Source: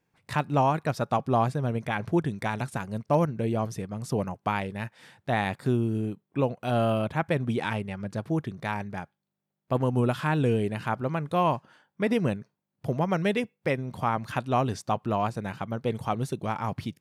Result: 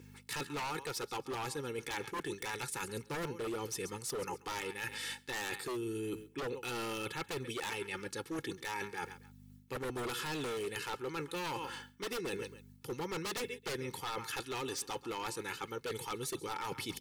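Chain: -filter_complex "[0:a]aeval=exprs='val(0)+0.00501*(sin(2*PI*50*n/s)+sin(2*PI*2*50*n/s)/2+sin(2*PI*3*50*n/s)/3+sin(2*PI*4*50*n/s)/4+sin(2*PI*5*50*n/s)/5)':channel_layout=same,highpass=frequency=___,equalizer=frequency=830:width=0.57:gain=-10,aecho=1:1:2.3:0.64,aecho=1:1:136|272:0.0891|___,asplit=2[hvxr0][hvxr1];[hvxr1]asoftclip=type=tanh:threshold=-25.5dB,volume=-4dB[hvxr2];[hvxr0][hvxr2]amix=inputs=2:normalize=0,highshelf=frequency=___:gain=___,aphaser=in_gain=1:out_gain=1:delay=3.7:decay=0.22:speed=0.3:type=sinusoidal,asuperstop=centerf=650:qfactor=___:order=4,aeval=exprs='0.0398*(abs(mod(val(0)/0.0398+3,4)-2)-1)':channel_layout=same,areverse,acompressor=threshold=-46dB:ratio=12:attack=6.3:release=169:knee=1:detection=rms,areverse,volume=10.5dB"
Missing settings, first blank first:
390, 0.0205, 5000, 4.5, 2.1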